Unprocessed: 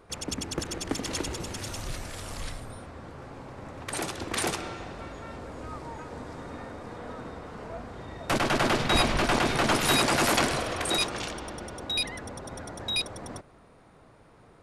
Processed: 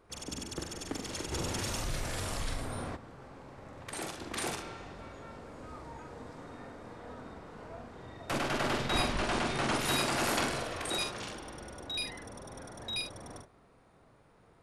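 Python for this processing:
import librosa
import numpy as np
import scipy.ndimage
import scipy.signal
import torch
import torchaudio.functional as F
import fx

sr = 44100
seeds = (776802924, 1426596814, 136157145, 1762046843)

p1 = fx.steep_lowpass(x, sr, hz=11000.0, slope=96, at=(9.09, 9.77))
p2 = p1 + fx.room_early_taps(p1, sr, ms=(44, 73), db=(-5.0, -13.5), dry=0)
p3 = fx.env_flatten(p2, sr, amount_pct=50, at=(1.31, 2.95), fade=0.02)
y = p3 * librosa.db_to_amplitude(-8.0)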